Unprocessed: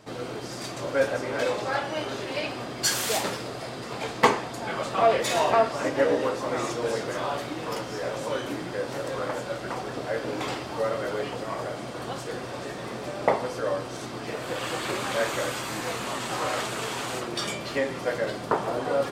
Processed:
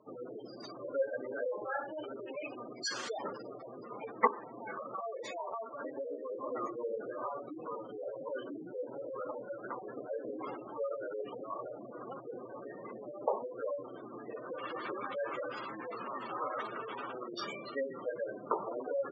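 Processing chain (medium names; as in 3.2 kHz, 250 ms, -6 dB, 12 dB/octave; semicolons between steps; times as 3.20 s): spectral gate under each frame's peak -10 dB strong; cabinet simulation 250–6200 Hz, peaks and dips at 720 Hz -6 dB, 1.2 kHz +5 dB, 3.5 kHz -4 dB; 4.27–6.30 s: compression 5:1, threshold -31 dBFS, peak gain reduction 10.5 dB; trim -7 dB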